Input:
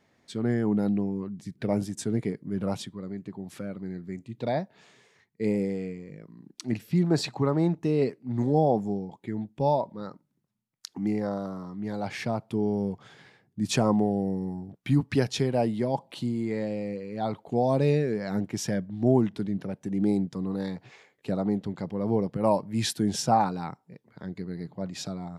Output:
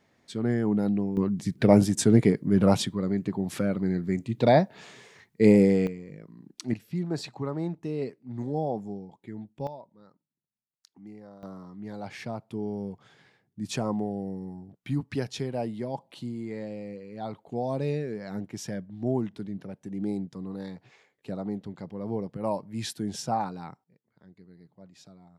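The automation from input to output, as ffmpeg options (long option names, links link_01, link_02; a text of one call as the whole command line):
ffmpeg -i in.wav -af "asetnsamples=nb_out_samples=441:pad=0,asendcmd='1.17 volume volume 9dB;5.87 volume volume 0dB;6.74 volume volume -7dB;9.67 volume volume -18dB;11.43 volume volume -6dB;23.84 volume volume -17dB',volume=0dB" out.wav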